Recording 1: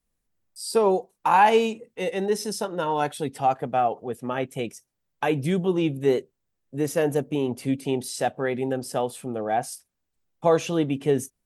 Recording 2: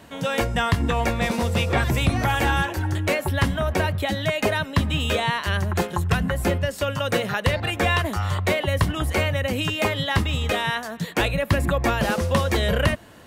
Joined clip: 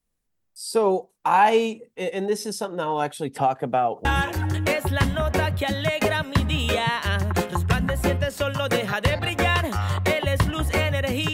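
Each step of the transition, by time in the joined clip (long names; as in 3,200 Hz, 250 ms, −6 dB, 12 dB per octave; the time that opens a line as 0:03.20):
recording 1
0:03.36–0:04.05: multiband upward and downward compressor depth 100%
0:04.05: continue with recording 2 from 0:02.46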